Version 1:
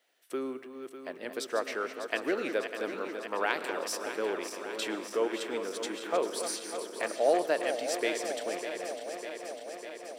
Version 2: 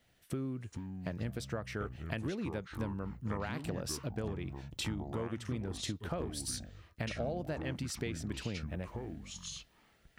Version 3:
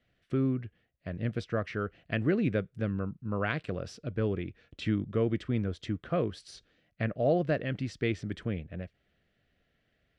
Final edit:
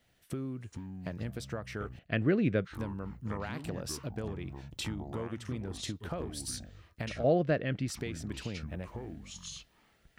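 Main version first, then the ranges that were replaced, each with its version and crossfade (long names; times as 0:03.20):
2
0:01.99–0:02.65: punch in from 3
0:07.24–0:07.88: punch in from 3
not used: 1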